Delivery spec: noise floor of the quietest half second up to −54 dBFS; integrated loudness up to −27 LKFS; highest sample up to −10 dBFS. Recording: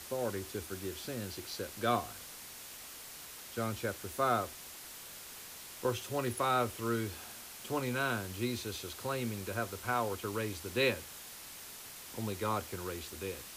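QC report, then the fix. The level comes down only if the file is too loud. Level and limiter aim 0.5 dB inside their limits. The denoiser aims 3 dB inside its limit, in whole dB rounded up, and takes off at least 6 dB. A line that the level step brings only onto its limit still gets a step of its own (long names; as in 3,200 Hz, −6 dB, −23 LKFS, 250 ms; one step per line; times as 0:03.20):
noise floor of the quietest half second −49 dBFS: out of spec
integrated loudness −37.0 LKFS: in spec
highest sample −16.5 dBFS: in spec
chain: broadband denoise 8 dB, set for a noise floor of −49 dBFS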